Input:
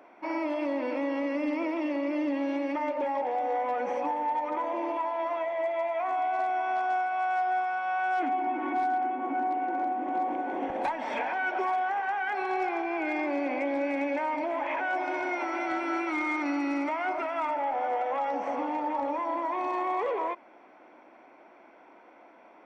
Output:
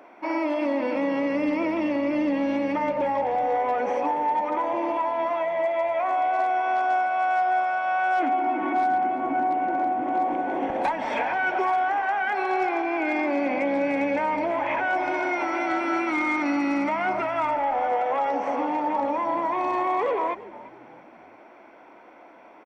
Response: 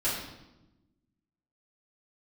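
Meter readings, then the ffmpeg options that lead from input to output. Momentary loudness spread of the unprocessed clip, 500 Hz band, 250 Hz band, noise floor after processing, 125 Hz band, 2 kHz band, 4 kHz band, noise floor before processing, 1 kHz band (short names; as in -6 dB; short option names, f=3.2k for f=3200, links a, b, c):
3 LU, +5.0 dB, +5.0 dB, -49 dBFS, n/a, +5.0 dB, +5.0 dB, -55 dBFS, +5.0 dB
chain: -filter_complex "[0:a]asplit=4[a][b][c][d];[b]adelay=340,afreqshift=-79,volume=-18dB[e];[c]adelay=680,afreqshift=-158,volume=-26.2dB[f];[d]adelay=1020,afreqshift=-237,volume=-34.4dB[g];[a][e][f][g]amix=inputs=4:normalize=0,volume=5dB"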